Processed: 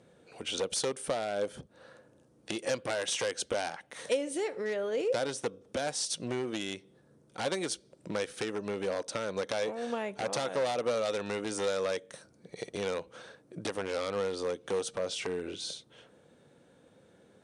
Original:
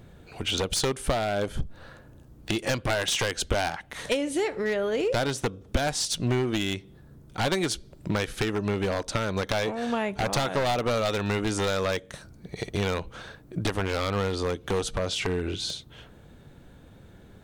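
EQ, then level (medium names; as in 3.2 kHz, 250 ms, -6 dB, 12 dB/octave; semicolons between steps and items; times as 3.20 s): cabinet simulation 190–9900 Hz, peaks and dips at 510 Hz +8 dB, 5.7 kHz +4 dB, 9.1 kHz +9 dB; -8.0 dB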